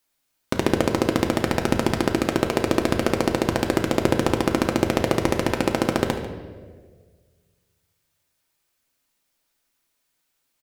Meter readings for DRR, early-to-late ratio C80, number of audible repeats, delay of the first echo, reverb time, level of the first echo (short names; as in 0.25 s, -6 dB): 2.5 dB, 8.5 dB, 1, 0.145 s, 1.6 s, -15.5 dB